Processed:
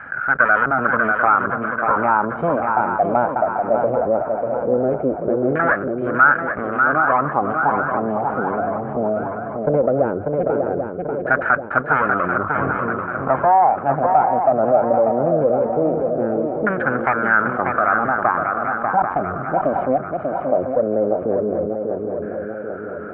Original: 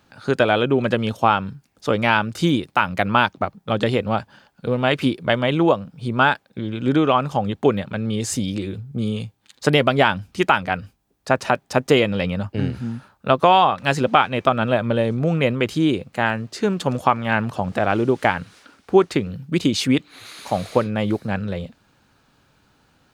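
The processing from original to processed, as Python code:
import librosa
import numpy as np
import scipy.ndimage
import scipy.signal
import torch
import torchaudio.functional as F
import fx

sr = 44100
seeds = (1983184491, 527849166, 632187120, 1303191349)

p1 = fx.lower_of_two(x, sr, delay_ms=1.3)
p2 = fx.filter_lfo_lowpass(p1, sr, shape='saw_down', hz=0.18, low_hz=380.0, high_hz=1700.0, q=4.5)
p3 = fx.cabinet(p2, sr, low_hz=110.0, low_slope=12, high_hz=2200.0, hz=(110.0, 190.0, 900.0, 1300.0), db=(-10, -8, -7, 7))
p4 = p3 + fx.echo_swing(p3, sr, ms=789, ratio=3, feedback_pct=32, wet_db=-8.5, dry=0)
p5 = fx.env_flatten(p4, sr, amount_pct=50)
y = p5 * librosa.db_to_amplitude(-7.0)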